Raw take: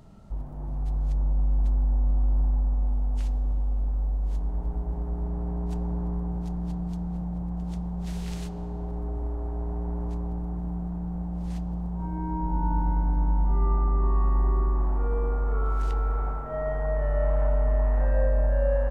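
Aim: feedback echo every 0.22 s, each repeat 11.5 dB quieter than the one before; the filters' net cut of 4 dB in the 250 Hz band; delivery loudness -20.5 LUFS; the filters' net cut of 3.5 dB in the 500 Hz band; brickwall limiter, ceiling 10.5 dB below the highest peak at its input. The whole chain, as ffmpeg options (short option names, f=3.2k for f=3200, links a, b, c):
-af "equalizer=f=250:t=o:g=-6.5,equalizer=f=500:t=o:g=-3,alimiter=level_in=0.5dB:limit=-24dB:level=0:latency=1,volume=-0.5dB,aecho=1:1:220|440|660:0.266|0.0718|0.0194,volume=11.5dB"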